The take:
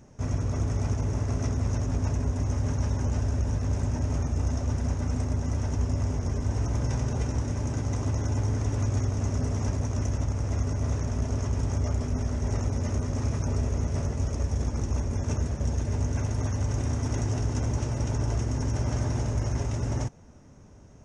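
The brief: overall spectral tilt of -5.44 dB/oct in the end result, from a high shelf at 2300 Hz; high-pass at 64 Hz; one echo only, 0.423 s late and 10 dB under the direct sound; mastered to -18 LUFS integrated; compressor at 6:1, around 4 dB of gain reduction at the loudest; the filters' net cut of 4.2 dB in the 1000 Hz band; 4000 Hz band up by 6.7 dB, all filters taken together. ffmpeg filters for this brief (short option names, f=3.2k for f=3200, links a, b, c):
-af "highpass=64,equalizer=f=1k:t=o:g=-6.5,highshelf=f=2.3k:g=3.5,equalizer=f=4k:t=o:g=6.5,acompressor=threshold=-28dB:ratio=6,aecho=1:1:423:0.316,volume=15dB"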